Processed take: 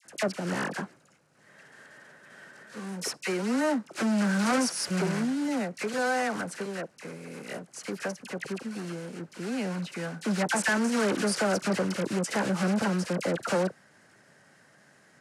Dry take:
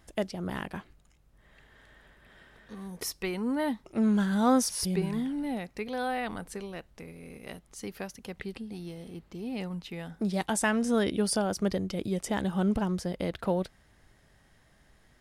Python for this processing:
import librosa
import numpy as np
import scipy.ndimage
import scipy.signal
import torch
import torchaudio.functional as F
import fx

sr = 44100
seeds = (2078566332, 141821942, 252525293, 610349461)

p1 = fx.block_float(x, sr, bits=3)
p2 = fx.dispersion(p1, sr, late='lows', ms=53.0, hz=1400.0)
p3 = fx.fold_sine(p2, sr, drive_db=14, ceiling_db=-11.0)
p4 = p2 + (p3 * 10.0 ** (-12.0 / 20.0))
p5 = fx.cabinet(p4, sr, low_hz=140.0, low_slope=24, high_hz=9800.0, hz=(550.0, 1500.0, 3500.0), db=(4, 7, -7))
y = p5 * 10.0 ** (-5.5 / 20.0)